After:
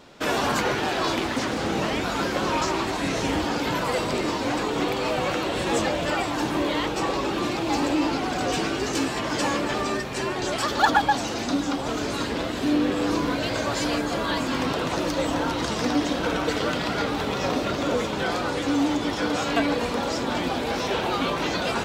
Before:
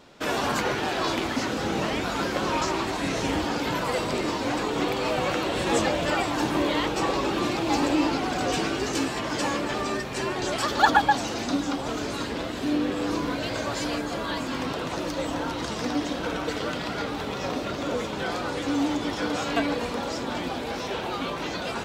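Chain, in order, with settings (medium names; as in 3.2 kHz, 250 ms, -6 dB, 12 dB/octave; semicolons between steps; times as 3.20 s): in parallel at -12 dB: wavefolder -20 dBFS; on the sum: gain riding 2 s; 1.23–1.69 s: loudspeaker Doppler distortion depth 0.46 ms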